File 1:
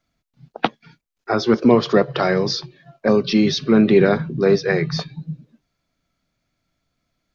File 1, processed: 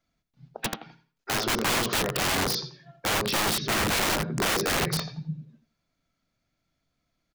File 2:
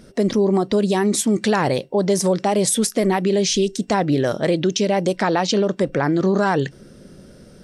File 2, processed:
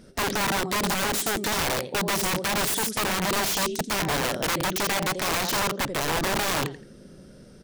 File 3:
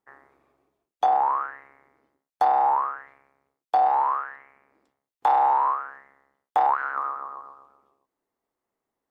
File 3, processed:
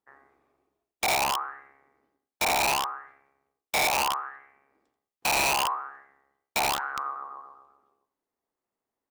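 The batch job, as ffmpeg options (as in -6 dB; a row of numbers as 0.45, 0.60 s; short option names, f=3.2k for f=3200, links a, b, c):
-af "flanger=delay=3.9:depth=4.4:regen=-90:speed=0.72:shape=sinusoidal,aecho=1:1:85|170|255:0.282|0.0648|0.0149,aeval=exprs='(mod(10*val(0)+1,2)-1)/10':c=same"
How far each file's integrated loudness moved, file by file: -7.5, -5.5, -3.0 LU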